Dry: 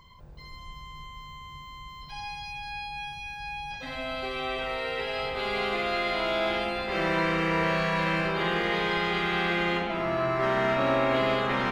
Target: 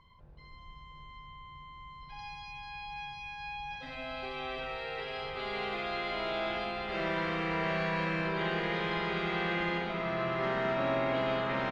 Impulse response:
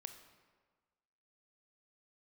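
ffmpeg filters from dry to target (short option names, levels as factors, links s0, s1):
-af "asetnsamples=n=441:p=0,asendcmd='2.19 lowpass f 5400',lowpass=3300,aecho=1:1:709|1418|2127|2836|3545|4254|4963:0.398|0.227|0.129|0.0737|0.042|0.024|0.0137,volume=0.447"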